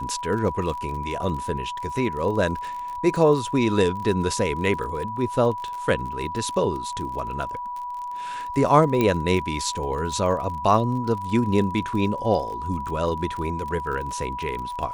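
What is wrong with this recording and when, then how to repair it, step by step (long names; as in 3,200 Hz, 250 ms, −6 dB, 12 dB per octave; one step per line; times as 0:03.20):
surface crackle 37 per second −31 dBFS
whistle 980 Hz −29 dBFS
0:09.01: click −9 dBFS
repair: click removal
notch filter 980 Hz, Q 30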